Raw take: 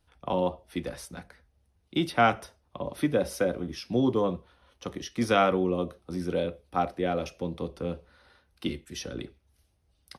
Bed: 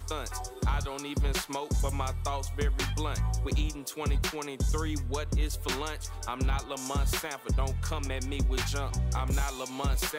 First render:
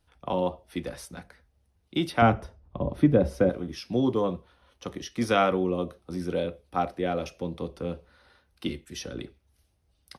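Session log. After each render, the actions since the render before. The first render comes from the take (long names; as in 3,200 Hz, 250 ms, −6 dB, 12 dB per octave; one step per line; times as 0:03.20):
0:02.22–0:03.50: spectral tilt −3.5 dB per octave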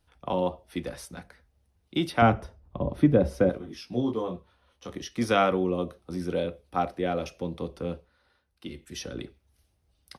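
0:03.58–0:04.90: micro pitch shift up and down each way 19 cents
0:07.94–0:08.85: duck −8.5 dB, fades 0.16 s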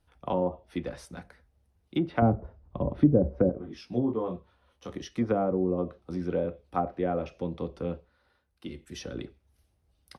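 treble cut that deepens with the level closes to 570 Hz, closed at −20.5 dBFS
parametric band 5,600 Hz −4.5 dB 2.9 octaves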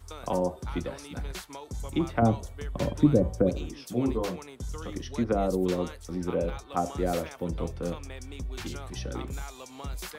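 mix in bed −8 dB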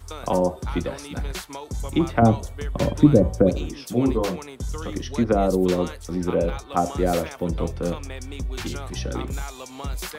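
level +6.5 dB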